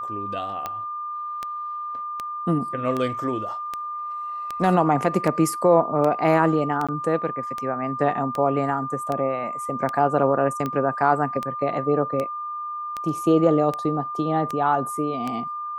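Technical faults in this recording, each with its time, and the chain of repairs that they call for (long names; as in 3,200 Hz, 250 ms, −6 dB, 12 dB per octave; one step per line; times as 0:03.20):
scratch tick 78 rpm −14 dBFS
whistle 1,200 Hz −28 dBFS
0:06.87–0:06.89: drop-out 16 ms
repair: click removal
notch filter 1,200 Hz, Q 30
repair the gap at 0:06.87, 16 ms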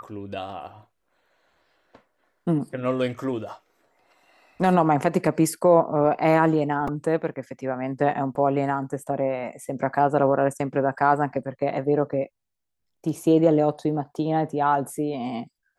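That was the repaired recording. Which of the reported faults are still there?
none of them is left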